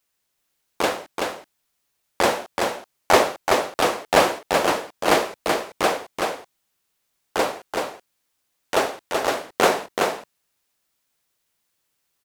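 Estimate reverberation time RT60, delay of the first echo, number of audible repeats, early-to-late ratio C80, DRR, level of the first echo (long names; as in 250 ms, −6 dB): no reverb audible, 379 ms, 1, no reverb audible, no reverb audible, −4.0 dB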